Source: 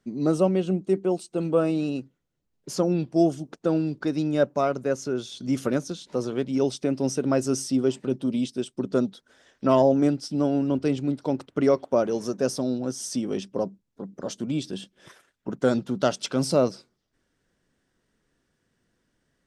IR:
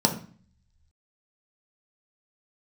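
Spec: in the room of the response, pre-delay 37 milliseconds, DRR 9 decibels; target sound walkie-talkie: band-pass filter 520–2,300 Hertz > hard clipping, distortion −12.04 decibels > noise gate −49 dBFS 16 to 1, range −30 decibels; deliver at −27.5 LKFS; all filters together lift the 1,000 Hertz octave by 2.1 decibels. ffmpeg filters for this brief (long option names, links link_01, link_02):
-filter_complex "[0:a]equalizer=frequency=1000:width_type=o:gain=4,asplit=2[link_01][link_02];[1:a]atrim=start_sample=2205,adelay=37[link_03];[link_02][link_03]afir=irnorm=-1:irlink=0,volume=-22.5dB[link_04];[link_01][link_04]amix=inputs=2:normalize=0,highpass=520,lowpass=2300,asoftclip=type=hard:threshold=-19dB,agate=range=-30dB:threshold=-49dB:ratio=16,volume=2.5dB"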